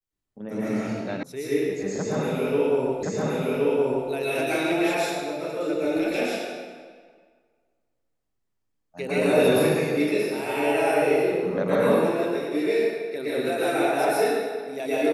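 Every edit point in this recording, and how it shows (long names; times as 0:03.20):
0:01.23: cut off before it has died away
0:03.03: the same again, the last 1.07 s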